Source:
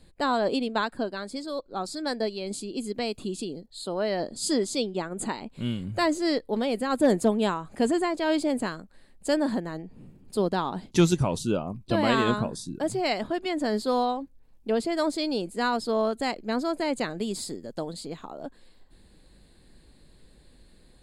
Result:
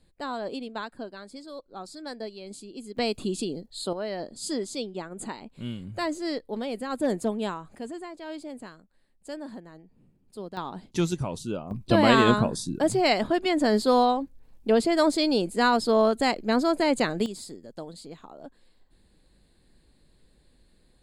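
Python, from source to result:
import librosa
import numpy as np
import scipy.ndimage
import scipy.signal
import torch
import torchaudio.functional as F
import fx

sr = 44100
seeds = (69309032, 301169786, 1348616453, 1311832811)

y = fx.gain(x, sr, db=fx.steps((0.0, -8.0), (2.97, 3.0), (3.93, -5.0), (7.78, -13.0), (10.57, -5.5), (11.71, 4.5), (17.26, -6.0)))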